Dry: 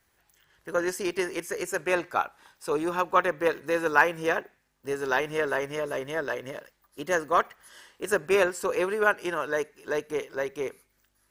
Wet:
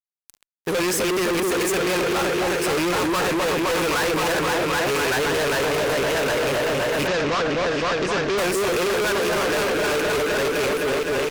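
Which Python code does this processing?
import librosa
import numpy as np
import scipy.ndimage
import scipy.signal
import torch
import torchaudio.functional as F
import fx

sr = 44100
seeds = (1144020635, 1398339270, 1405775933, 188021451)

y = fx.rattle_buzz(x, sr, strikes_db=-40.0, level_db=-23.0)
y = fx.echo_opening(y, sr, ms=258, hz=750, octaves=1, feedback_pct=70, wet_db=-3)
y = fx.fuzz(y, sr, gain_db=45.0, gate_db=-51.0)
y = fx.lowpass(y, sr, hz=6100.0, slope=24, at=(7.07, 8.38))
y = y * librosa.db_to_amplitude(-7.5)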